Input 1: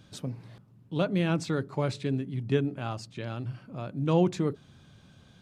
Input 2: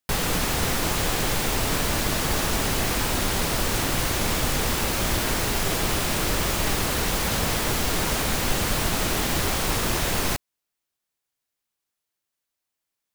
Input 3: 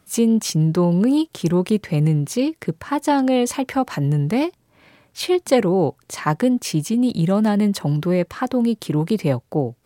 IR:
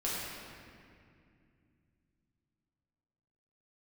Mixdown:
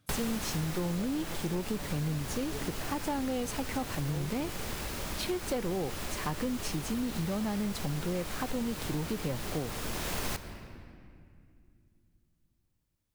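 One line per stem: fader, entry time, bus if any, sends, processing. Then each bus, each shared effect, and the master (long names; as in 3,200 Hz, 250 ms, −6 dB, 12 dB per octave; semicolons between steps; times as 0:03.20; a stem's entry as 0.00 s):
−15.5 dB, 0.00 s, no send, no processing
−4.5 dB, 0.00 s, send −18 dB, automatic ducking −13 dB, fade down 1.10 s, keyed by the third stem
−13.5 dB, 0.00 s, no send, leveller curve on the samples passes 1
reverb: on, RT60 2.4 s, pre-delay 5 ms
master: downward compressor 4 to 1, threshold −30 dBFS, peak gain reduction 7.5 dB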